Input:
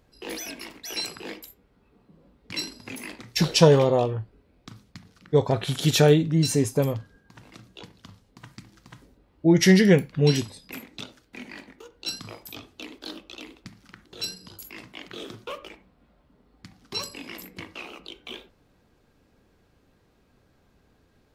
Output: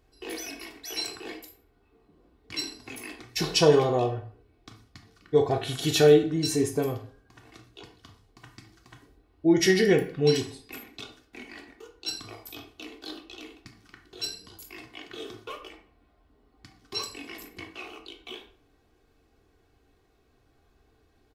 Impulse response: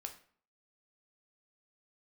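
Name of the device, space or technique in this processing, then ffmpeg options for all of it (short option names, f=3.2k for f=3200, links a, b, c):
microphone above a desk: -filter_complex "[0:a]aecho=1:1:2.7:0.58[a];[1:a]atrim=start_sample=2205[b];[a][b]afir=irnorm=-1:irlink=0"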